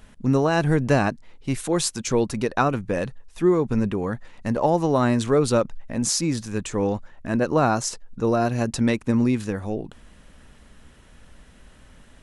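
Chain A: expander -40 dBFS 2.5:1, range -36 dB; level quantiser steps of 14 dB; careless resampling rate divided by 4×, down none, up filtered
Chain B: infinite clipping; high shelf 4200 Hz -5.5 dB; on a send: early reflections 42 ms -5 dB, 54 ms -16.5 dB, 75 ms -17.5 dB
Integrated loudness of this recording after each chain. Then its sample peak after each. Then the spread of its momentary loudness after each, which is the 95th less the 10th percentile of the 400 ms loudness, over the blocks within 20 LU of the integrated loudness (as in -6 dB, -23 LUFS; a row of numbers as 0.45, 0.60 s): -30.5, -24.0 LUFS; -12.0, -18.5 dBFS; 6, 4 LU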